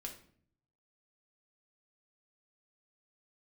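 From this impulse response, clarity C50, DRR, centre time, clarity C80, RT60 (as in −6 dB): 9.0 dB, 0.5 dB, 17 ms, 13.5 dB, 0.55 s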